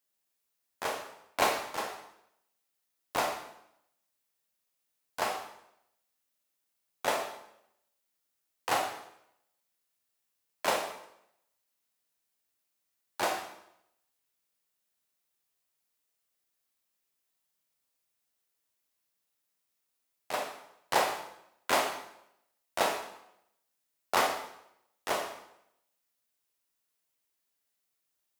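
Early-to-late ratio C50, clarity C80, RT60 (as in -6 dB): 5.5 dB, 8.5 dB, 0.80 s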